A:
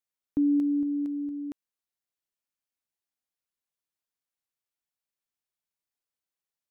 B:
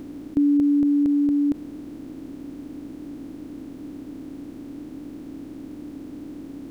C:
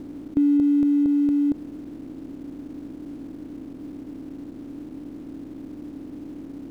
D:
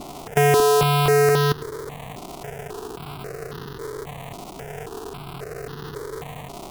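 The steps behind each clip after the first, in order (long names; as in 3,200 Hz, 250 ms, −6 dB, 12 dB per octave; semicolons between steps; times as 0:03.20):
compressor on every frequency bin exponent 0.2; level +4.5 dB
running median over 25 samples
sub-harmonics by changed cycles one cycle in 2, inverted; step-sequenced phaser 3.7 Hz 450–2,300 Hz; level +6 dB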